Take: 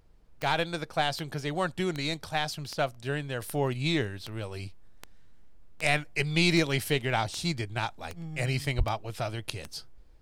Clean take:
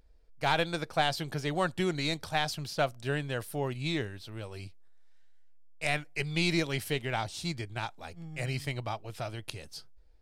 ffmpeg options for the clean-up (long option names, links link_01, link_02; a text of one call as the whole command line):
ffmpeg -i in.wav -filter_complex "[0:a]adeclick=threshold=4,asplit=3[link_01][link_02][link_03];[link_01]afade=type=out:start_time=8.77:duration=0.02[link_04];[link_02]highpass=frequency=140:width=0.5412,highpass=frequency=140:width=1.3066,afade=type=in:start_time=8.77:duration=0.02,afade=type=out:start_time=8.89:duration=0.02[link_05];[link_03]afade=type=in:start_time=8.89:duration=0.02[link_06];[link_04][link_05][link_06]amix=inputs=3:normalize=0,agate=range=-21dB:threshold=-39dB,asetnsamples=nb_out_samples=441:pad=0,asendcmd='3.42 volume volume -4.5dB',volume=0dB" out.wav